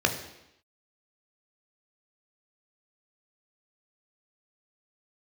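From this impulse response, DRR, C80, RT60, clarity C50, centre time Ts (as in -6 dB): 3.5 dB, 11.5 dB, 0.85 s, 9.5 dB, 18 ms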